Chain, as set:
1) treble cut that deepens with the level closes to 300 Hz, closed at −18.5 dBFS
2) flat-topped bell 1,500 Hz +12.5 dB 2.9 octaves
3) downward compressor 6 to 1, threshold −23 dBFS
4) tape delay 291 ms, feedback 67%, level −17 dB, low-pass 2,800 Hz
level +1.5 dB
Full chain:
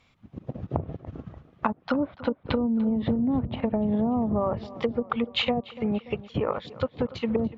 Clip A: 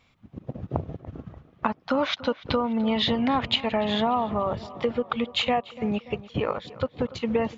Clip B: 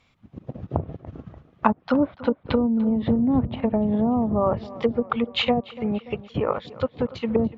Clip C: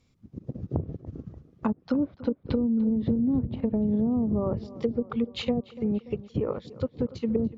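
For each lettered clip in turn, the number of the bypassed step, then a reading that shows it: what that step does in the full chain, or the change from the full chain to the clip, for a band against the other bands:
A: 1, 250 Hz band −6.5 dB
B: 3, average gain reduction 2.5 dB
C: 2, 1 kHz band −9.0 dB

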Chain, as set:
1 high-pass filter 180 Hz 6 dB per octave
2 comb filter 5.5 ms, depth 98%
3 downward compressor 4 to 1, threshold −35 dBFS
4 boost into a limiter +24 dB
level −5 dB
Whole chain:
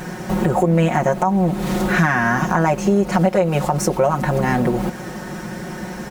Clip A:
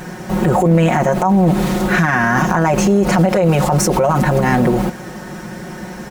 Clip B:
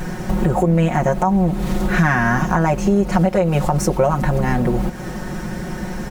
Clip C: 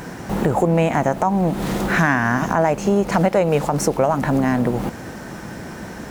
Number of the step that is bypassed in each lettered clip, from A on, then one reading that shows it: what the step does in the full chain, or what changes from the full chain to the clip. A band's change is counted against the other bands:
3, average gain reduction 9.5 dB
1, 125 Hz band +3.0 dB
2, change in momentary loudness spread +3 LU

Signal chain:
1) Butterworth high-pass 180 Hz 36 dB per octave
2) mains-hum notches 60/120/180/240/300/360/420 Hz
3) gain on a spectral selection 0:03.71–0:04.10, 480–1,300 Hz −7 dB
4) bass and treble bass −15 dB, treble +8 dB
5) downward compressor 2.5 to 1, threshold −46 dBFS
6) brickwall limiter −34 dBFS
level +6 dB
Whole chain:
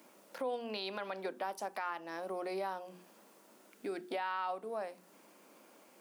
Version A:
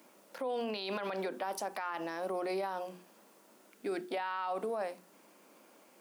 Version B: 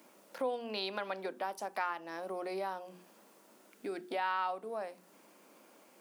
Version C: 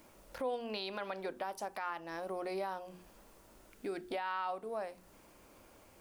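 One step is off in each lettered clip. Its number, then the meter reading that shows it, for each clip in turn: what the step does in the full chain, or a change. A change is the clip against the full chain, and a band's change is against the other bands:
5, average gain reduction 10.0 dB
6, change in crest factor +4.5 dB
1, 125 Hz band +2.5 dB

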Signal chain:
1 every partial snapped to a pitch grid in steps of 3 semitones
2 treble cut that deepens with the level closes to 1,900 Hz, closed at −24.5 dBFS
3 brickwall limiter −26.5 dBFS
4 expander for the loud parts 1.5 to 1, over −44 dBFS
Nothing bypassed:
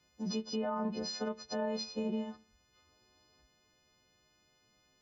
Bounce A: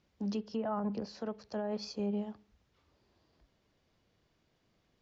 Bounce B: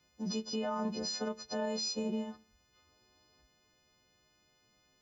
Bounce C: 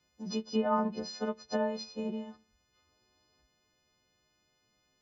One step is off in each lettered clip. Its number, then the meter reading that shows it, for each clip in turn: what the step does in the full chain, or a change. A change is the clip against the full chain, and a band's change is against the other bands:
1, 4 kHz band −6.5 dB
2, 4 kHz band +3.5 dB
3, change in crest factor +6.0 dB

